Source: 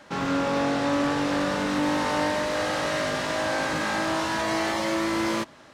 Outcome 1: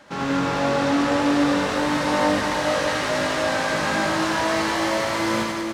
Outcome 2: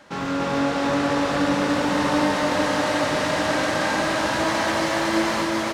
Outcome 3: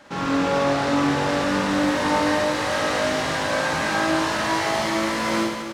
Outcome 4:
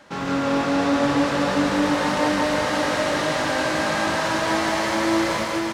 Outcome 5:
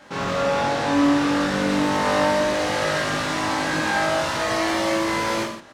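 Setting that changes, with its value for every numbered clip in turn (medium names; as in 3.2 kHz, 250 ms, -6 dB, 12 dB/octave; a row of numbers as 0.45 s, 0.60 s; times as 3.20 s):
reverse bouncing-ball echo, first gap: 80 ms, 290 ms, 50 ms, 160 ms, 20 ms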